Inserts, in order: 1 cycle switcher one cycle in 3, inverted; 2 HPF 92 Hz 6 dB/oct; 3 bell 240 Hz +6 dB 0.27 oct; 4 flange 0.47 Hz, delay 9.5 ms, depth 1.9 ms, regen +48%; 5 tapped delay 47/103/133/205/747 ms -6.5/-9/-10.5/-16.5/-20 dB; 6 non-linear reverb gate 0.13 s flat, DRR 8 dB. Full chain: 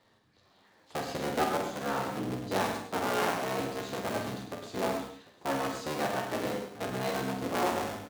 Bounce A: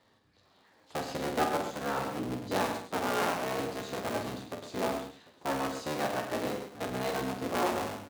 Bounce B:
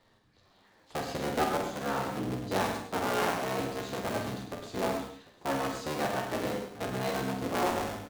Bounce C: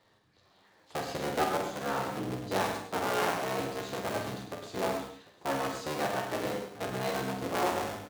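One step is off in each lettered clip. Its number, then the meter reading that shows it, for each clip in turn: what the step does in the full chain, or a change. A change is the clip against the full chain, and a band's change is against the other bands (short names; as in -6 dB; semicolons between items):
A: 6, echo-to-direct -1.5 dB to -3.5 dB; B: 2, 125 Hz band +1.5 dB; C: 3, 250 Hz band -2.0 dB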